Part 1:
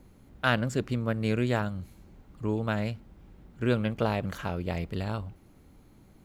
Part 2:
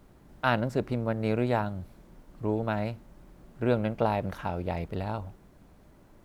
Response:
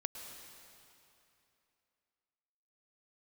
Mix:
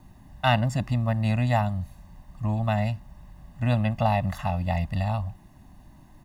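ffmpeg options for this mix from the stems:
-filter_complex "[0:a]volume=0.794[s0];[1:a]adelay=1.8,volume=0.891[s1];[s0][s1]amix=inputs=2:normalize=0,aecho=1:1:1.1:0.86"

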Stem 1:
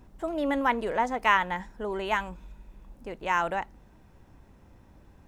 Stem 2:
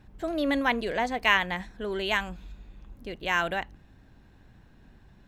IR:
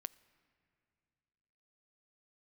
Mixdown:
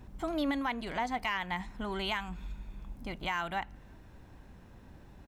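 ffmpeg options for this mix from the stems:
-filter_complex "[0:a]acompressor=threshold=0.0224:ratio=6,volume=1[s0];[1:a]acontrast=70,adelay=0.5,volume=0.251,asplit=2[s1][s2];[s2]volume=0.631[s3];[2:a]atrim=start_sample=2205[s4];[s3][s4]afir=irnorm=-1:irlink=0[s5];[s0][s1][s5]amix=inputs=3:normalize=0,alimiter=limit=0.0794:level=0:latency=1:release=294"

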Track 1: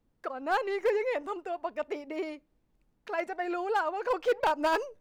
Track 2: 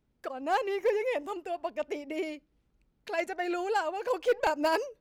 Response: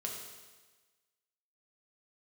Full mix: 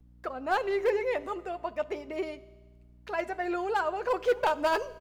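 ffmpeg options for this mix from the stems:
-filter_complex "[0:a]volume=0.891,asplit=2[s0][s1];[s1]volume=0.188[s2];[1:a]aeval=exprs='val(0)+0.00562*(sin(2*PI*60*n/s)+sin(2*PI*2*60*n/s)/2+sin(2*PI*3*60*n/s)/3+sin(2*PI*4*60*n/s)/4+sin(2*PI*5*60*n/s)/5)':c=same,adelay=7.7,volume=0.237,asplit=2[s3][s4];[s4]volume=0.422[s5];[2:a]atrim=start_sample=2205[s6];[s2][s5]amix=inputs=2:normalize=0[s7];[s7][s6]afir=irnorm=-1:irlink=0[s8];[s0][s3][s8]amix=inputs=3:normalize=0"

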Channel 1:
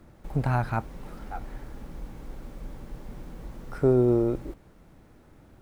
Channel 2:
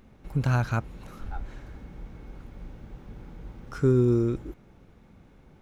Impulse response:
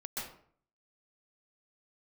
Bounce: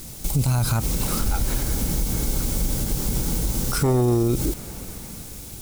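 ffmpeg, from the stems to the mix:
-filter_complex "[0:a]bass=f=250:g=10,treble=f=4000:g=14,alimiter=limit=0.224:level=0:latency=1,aexciter=amount=5.7:drive=6.1:freq=2200,volume=1.33,asplit=2[s0][s1];[1:a]dynaudnorm=f=120:g=11:m=2.82,aeval=exprs='0.708*sin(PI/2*2.51*val(0)/0.708)':c=same,volume=0.708[s2];[s1]apad=whole_len=247777[s3];[s2][s3]sidechaincompress=threshold=0.0708:ratio=8:attack=16:release=147[s4];[s0][s4]amix=inputs=2:normalize=0,alimiter=limit=0.224:level=0:latency=1:release=70"

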